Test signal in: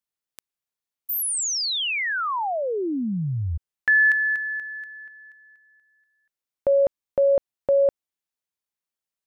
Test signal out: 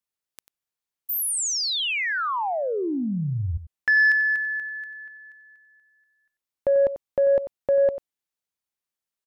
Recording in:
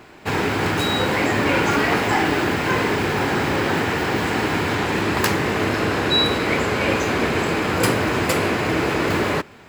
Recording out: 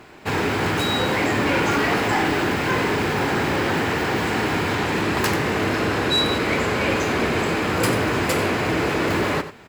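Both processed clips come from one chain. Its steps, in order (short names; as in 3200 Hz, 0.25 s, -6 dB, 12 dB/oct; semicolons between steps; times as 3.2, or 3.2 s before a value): echo 92 ms -13 dB; in parallel at -9 dB: sine folder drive 9 dB, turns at -2.5 dBFS; on the sum: gain -8.5 dB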